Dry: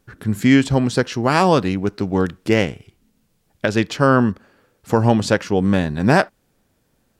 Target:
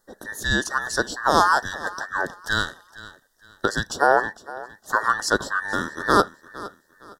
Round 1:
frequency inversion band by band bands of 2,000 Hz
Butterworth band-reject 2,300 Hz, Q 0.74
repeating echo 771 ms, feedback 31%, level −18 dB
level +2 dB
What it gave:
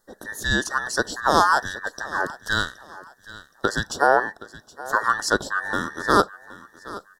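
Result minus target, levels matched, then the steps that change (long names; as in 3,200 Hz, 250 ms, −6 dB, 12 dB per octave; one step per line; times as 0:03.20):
echo 310 ms late
change: repeating echo 461 ms, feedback 31%, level −18 dB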